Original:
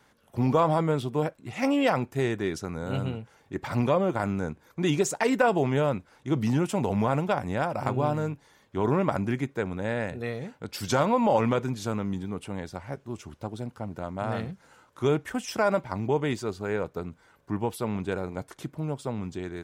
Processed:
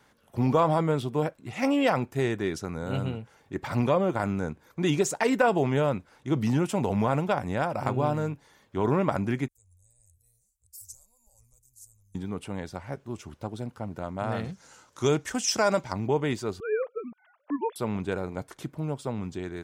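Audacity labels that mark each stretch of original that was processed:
9.480000	12.150000	inverse Chebyshev band-stop 140–3400 Hz, stop band 50 dB
14.440000	15.930000	bell 6200 Hz +13 dB 1.2 oct
16.600000	17.760000	sine-wave speech

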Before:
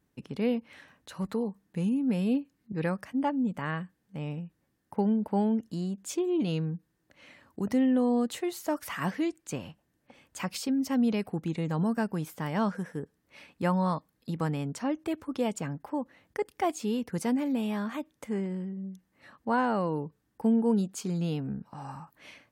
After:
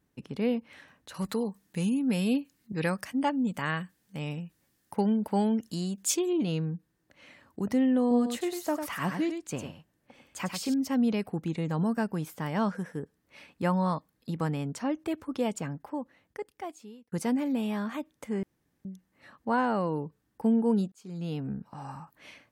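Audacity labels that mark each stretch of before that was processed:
1.140000	6.330000	high shelf 2300 Hz +12 dB
8.010000	10.740000	echo 99 ms -7 dB
15.570000	17.120000	fade out
18.430000	18.850000	room tone
20.920000	21.460000	fade in

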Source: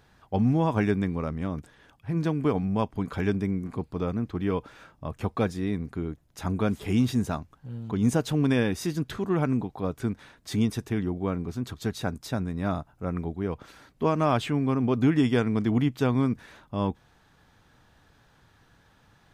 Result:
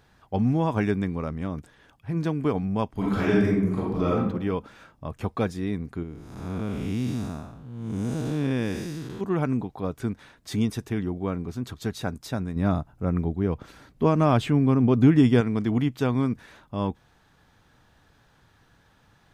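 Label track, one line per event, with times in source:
2.940000	4.170000	reverb throw, RT60 0.81 s, DRR -6.5 dB
6.030000	9.210000	time blur width 0.29 s
12.560000	15.410000	low shelf 390 Hz +7 dB

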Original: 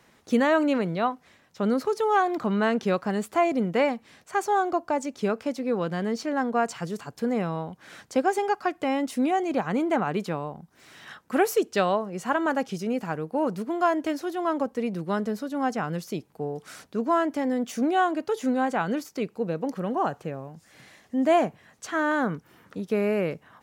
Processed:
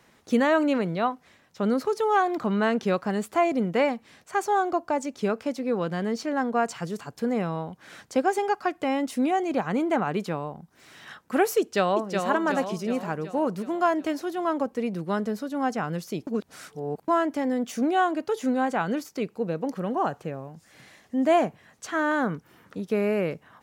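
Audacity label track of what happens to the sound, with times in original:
11.590000	12.270000	echo throw 0.37 s, feedback 55%, level -5 dB
16.270000	17.080000	reverse

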